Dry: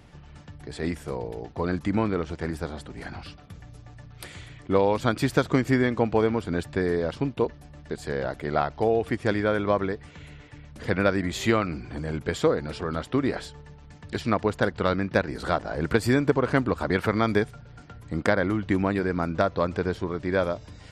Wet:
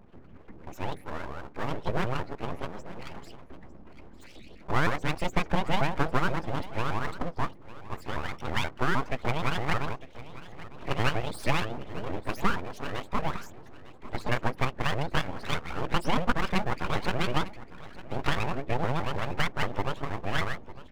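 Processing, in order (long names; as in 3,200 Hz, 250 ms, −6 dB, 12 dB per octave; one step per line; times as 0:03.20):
pitch shifter swept by a sawtooth +10.5 semitones, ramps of 157 ms
spectral peaks only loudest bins 32
full-wave rectification
on a send: single-tap delay 902 ms −17 dB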